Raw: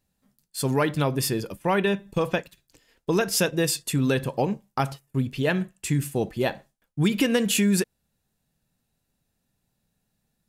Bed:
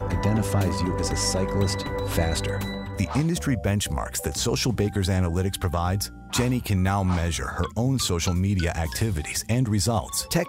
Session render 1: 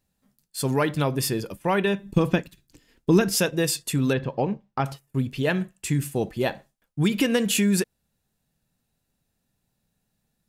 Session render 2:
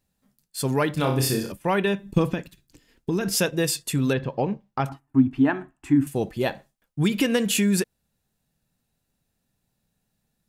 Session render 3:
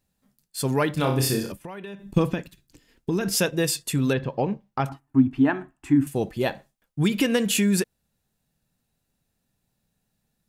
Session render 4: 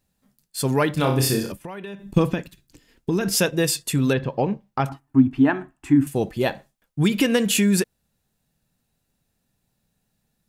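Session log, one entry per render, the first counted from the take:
0:02.03–0:03.35: low shelf with overshoot 400 Hz +6.5 dB, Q 1.5; 0:04.13–0:04.86: high-frequency loss of the air 200 metres
0:00.94–0:01.52: flutter between parallel walls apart 5.3 metres, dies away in 0.44 s; 0:02.26–0:03.32: downward compressor, threshold −20 dBFS; 0:04.89–0:06.07: drawn EQ curve 130 Hz 0 dB, 190 Hz −15 dB, 270 Hz +14 dB, 500 Hz −14 dB, 760 Hz +7 dB, 1,400 Hz +3 dB, 2,100 Hz −5 dB, 4,400 Hz −16 dB, 8,500 Hz −16 dB, 15,000 Hz −20 dB
0:01.62–0:02.14: downward compressor 12 to 1, threshold −33 dBFS
level +2.5 dB

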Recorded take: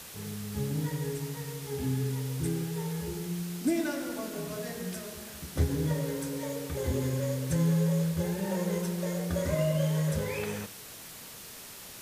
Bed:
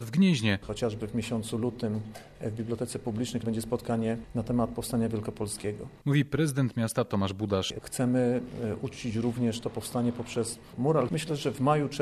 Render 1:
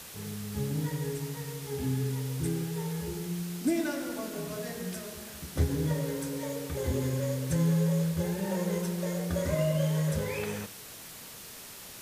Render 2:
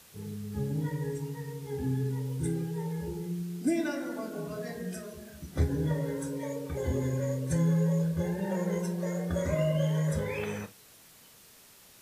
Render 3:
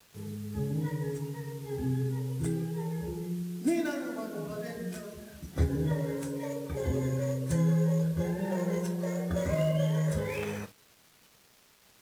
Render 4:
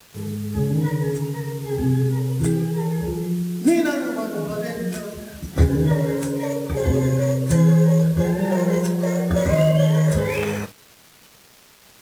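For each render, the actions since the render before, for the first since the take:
no processing that can be heard
noise reduction from a noise print 10 dB
gap after every zero crossing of 0.069 ms; pitch vibrato 0.34 Hz 16 cents
level +11 dB

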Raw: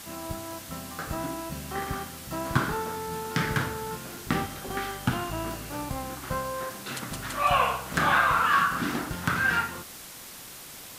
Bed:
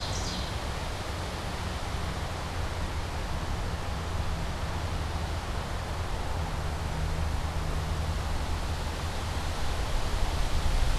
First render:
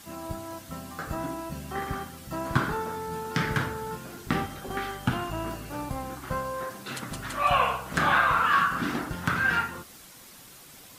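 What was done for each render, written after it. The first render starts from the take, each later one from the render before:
broadband denoise 7 dB, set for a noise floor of −44 dBFS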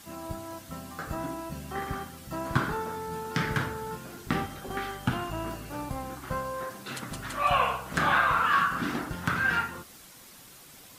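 level −1.5 dB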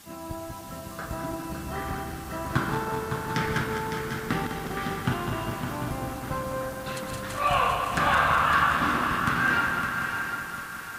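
feedback delay that plays each chunk backwards 102 ms, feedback 79%, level −6.5 dB
on a send: feedback echo with a long and a short gap by turns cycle 745 ms, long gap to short 3 to 1, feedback 37%, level −7.5 dB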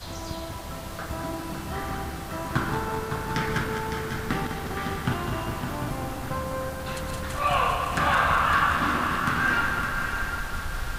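mix in bed −6 dB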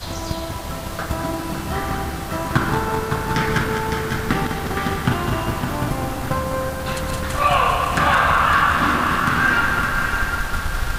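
transient designer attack +4 dB, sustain 0 dB
in parallel at +2 dB: brickwall limiter −15.5 dBFS, peak gain reduction 8 dB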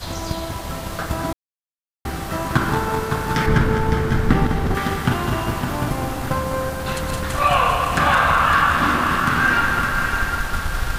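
0:01.33–0:02.05: silence
0:03.46–0:04.75: spectral tilt −2 dB per octave

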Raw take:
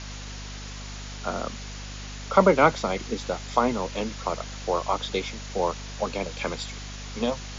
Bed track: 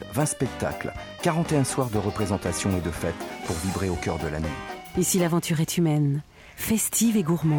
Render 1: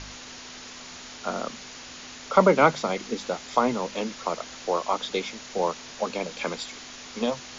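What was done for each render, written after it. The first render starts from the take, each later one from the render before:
hum removal 50 Hz, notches 4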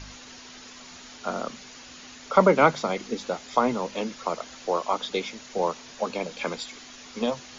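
broadband denoise 6 dB, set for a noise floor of −43 dBFS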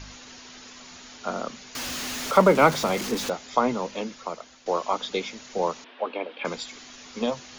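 0:01.75–0:03.30: converter with a step at zero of −28 dBFS
0:03.83–0:04.66: fade out, to −11 dB
0:05.84–0:06.45: elliptic band-pass filter 280–3,200 Hz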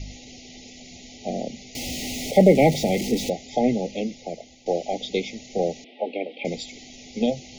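low-shelf EQ 330 Hz +9 dB
brick-wall band-stop 840–1,900 Hz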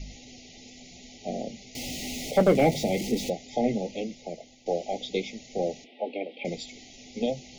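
hard clipping −8.5 dBFS, distortion −18 dB
flanger 0.94 Hz, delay 4.5 ms, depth 5.8 ms, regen −62%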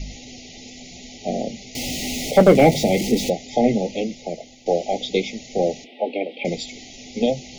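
level +8 dB

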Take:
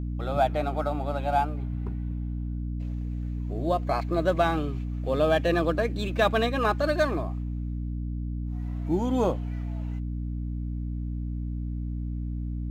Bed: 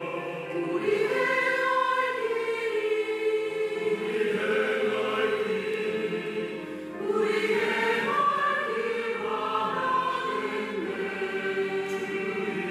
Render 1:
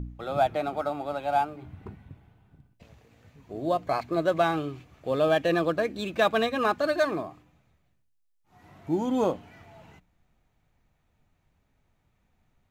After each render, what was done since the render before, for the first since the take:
hum removal 60 Hz, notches 5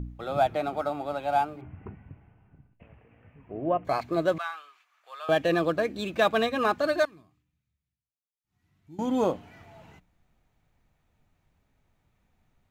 0:01.61–0:03.85: Butterworth low-pass 2,900 Hz 72 dB per octave
0:04.38–0:05.29: four-pole ladder high-pass 1,000 Hz, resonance 40%
0:07.05–0:08.99: guitar amp tone stack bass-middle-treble 6-0-2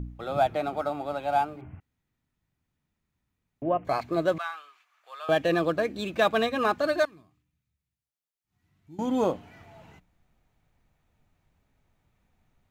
0:01.80–0:03.62: fill with room tone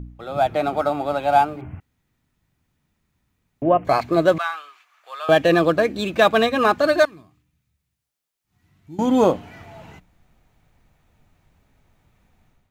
automatic gain control gain up to 9.5 dB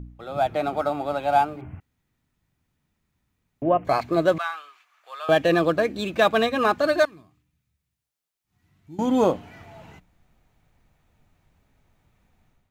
level −3.5 dB

